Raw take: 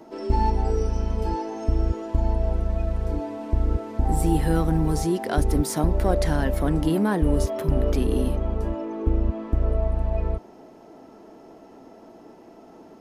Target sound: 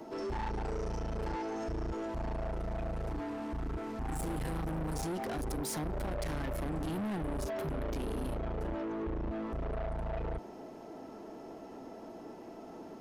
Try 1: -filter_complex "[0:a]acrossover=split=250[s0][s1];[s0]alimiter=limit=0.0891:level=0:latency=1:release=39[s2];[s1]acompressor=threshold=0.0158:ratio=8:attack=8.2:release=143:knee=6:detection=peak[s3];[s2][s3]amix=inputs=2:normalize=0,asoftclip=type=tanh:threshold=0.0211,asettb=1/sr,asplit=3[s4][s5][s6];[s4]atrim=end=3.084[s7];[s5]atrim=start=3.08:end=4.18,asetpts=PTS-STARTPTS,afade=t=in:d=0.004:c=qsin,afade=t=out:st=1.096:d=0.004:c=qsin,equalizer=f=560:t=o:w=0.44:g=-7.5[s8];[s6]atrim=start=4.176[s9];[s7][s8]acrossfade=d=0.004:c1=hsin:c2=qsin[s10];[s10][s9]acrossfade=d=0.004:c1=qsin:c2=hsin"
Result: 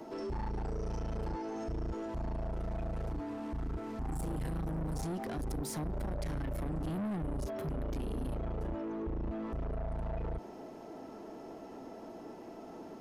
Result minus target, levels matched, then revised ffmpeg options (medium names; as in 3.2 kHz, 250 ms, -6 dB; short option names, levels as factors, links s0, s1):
compression: peak gain reduction +7 dB
-filter_complex "[0:a]acrossover=split=250[s0][s1];[s0]alimiter=limit=0.0891:level=0:latency=1:release=39[s2];[s1]acompressor=threshold=0.0398:ratio=8:attack=8.2:release=143:knee=6:detection=peak[s3];[s2][s3]amix=inputs=2:normalize=0,asoftclip=type=tanh:threshold=0.0211,asettb=1/sr,asplit=3[s4][s5][s6];[s4]atrim=end=3.084[s7];[s5]atrim=start=3.08:end=4.18,asetpts=PTS-STARTPTS,afade=t=in:d=0.004:c=qsin,afade=t=out:st=1.096:d=0.004:c=qsin,equalizer=f=560:t=o:w=0.44:g=-7.5[s8];[s6]atrim=start=4.176[s9];[s7][s8]acrossfade=d=0.004:c1=hsin:c2=qsin[s10];[s10][s9]acrossfade=d=0.004:c1=qsin:c2=hsin"